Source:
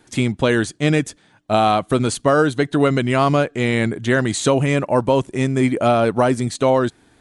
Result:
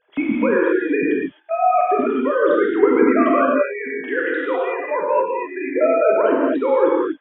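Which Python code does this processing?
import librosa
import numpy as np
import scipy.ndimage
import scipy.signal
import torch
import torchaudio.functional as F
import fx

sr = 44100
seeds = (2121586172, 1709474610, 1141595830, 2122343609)

y = fx.sine_speech(x, sr)
y = fx.level_steps(y, sr, step_db=10)
y = fx.highpass(y, sr, hz=480.0, slope=12, at=(3.49, 5.76))
y = fx.rev_gated(y, sr, seeds[0], gate_ms=290, shape='flat', drr_db=-4.0)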